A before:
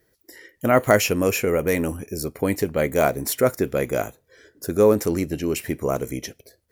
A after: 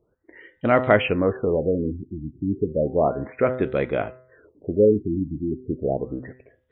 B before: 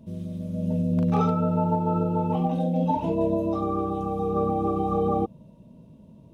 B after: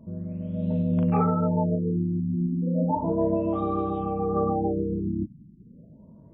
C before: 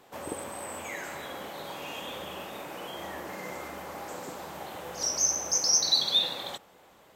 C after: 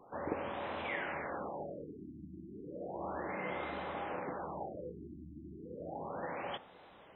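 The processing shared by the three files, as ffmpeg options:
-af "bandreject=f=127.7:t=h:w=4,bandreject=f=255.4:t=h:w=4,bandreject=f=383.1:t=h:w=4,bandreject=f=510.8:t=h:w=4,bandreject=f=638.5:t=h:w=4,bandreject=f=766.2:t=h:w=4,bandreject=f=893.9:t=h:w=4,bandreject=f=1.0216k:t=h:w=4,bandreject=f=1.1493k:t=h:w=4,bandreject=f=1.277k:t=h:w=4,bandreject=f=1.4047k:t=h:w=4,bandreject=f=1.5324k:t=h:w=4,bandreject=f=1.6601k:t=h:w=4,bandreject=f=1.7878k:t=h:w=4,bandreject=f=1.9155k:t=h:w=4,bandreject=f=2.0432k:t=h:w=4,afftfilt=real='re*lt(b*sr/1024,340*pow(4100/340,0.5+0.5*sin(2*PI*0.33*pts/sr)))':imag='im*lt(b*sr/1024,340*pow(4100/340,0.5+0.5*sin(2*PI*0.33*pts/sr)))':win_size=1024:overlap=0.75"

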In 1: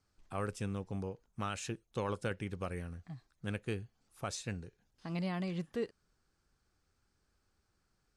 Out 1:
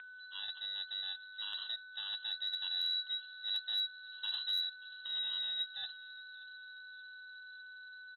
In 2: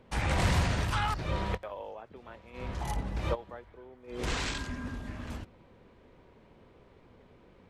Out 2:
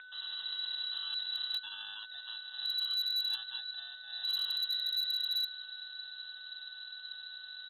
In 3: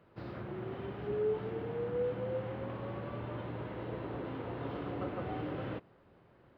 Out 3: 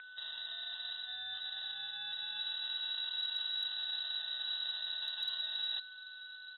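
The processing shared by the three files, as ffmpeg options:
-filter_complex "[0:a]adynamicequalizer=threshold=0.00251:dfrequency=1200:dqfactor=0.88:tfrequency=1200:tqfactor=0.88:attack=5:release=100:ratio=0.375:range=1.5:mode=cutabove:tftype=bell,asplit=2[a][b];[b]alimiter=level_in=4dB:limit=-24dB:level=0:latency=1:release=59,volume=-4dB,volume=-0.5dB[c];[a][c]amix=inputs=2:normalize=0,acrusher=samples=24:mix=1:aa=0.000001,asuperstop=centerf=1600:order=12:qfactor=2.4,areverse,acompressor=threshold=-36dB:ratio=10,areverse,aeval=exprs='val(0)+0.00501*sin(2*PI*2500*n/s)':c=same,acompressor=mode=upward:threshold=-46dB:ratio=2.5,asubboost=boost=5:cutoff=160,asplit=2[d][e];[e]adelay=582,lowpass=f=1.5k:p=1,volume=-19dB,asplit=2[f][g];[g]adelay=582,lowpass=f=1.5k:p=1,volume=0.49,asplit=2[h][i];[i]adelay=582,lowpass=f=1.5k:p=1,volume=0.49,asplit=2[j][k];[k]adelay=582,lowpass=f=1.5k:p=1,volume=0.49[l];[d][f][h][j][l]amix=inputs=5:normalize=0,lowpass=f=3.4k:t=q:w=0.5098,lowpass=f=3.4k:t=q:w=0.6013,lowpass=f=3.4k:t=q:w=0.9,lowpass=f=3.4k:t=q:w=2.563,afreqshift=-4000,asoftclip=type=hard:threshold=-25dB,volume=-4dB"

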